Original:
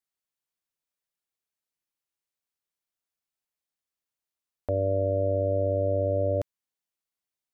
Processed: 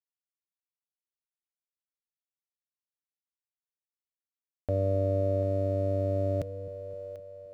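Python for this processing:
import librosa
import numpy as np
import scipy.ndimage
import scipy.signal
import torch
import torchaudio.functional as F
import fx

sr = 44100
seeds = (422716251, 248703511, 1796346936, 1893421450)

y = fx.graphic_eq_15(x, sr, hz=(160, 400, 1000), db=(8, -4, -9))
y = np.sign(y) * np.maximum(np.abs(y) - 10.0 ** (-53.5 / 20.0), 0.0)
y = fx.echo_split(y, sr, split_hz=460.0, low_ms=260, high_ms=741, feedback_pct=52, wet_db=-12.5)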